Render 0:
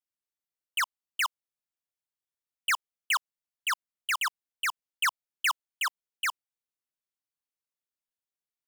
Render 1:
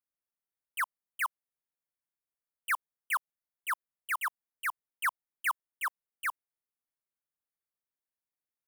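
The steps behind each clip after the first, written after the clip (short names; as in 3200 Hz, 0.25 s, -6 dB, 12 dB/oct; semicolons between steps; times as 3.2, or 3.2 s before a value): band shelf 4500 Hz -15 dB; gain -2 dB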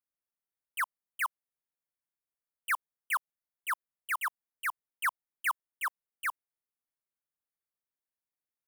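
nothing audible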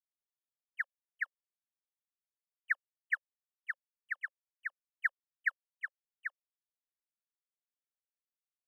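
double band-pass 980 Hz, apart 1.7 oct; upward expander 2.5:1, over -42 dBFS; gain +5 dB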